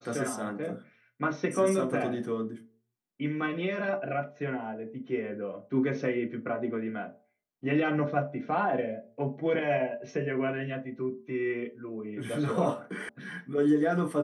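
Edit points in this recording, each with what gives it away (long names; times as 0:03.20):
0:13.09: cut off before it has died away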